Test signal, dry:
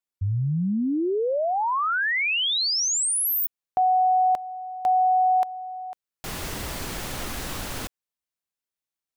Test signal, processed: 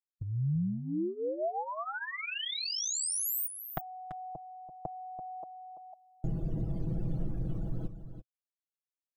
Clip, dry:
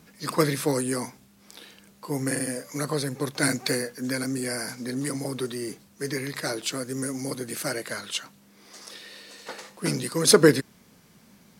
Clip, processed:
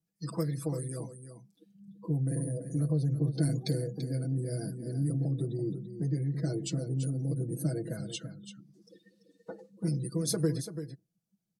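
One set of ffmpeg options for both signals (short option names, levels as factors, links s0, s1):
-filter_complex "[0:a]acrossover=split=450|1600[s0][s1][s2];[s0]dynaudnorm=f=260:g=13:m=4.47[s3];[s3][s1][s2]amix=inputs=3:normalize=0,afftdn=nr=32:nf=-32,equalizer=f=125:t=o:w=1:g=5,equalizer=f=250:t=o:w=1:g=-4,equalizer=f=500:t=o:w=1:g=-4,equalizer=f=1000:t=o:w=1:g=-10,equalizer=f=2000:t=o:w=1:g=-11,equalizer=f=4000:t=o:w=1:g=-4,acompressor=threshold=0.00501:ratio=2:attack=37:release=71:knee=1:detection=peak,aeval=exprs='0.0944*(abs(mod(val(0)/0.0944+3,4)-2)-1)':c=same,equalizer=f=700:t=o:w=0.43:g=4,aecho=1:1:6.1:0.8,asplit=2[s4][s5];[s5]aecho=0:1:337:0.299[s6];[s4][s6]amix=inputs=2:normalize=0"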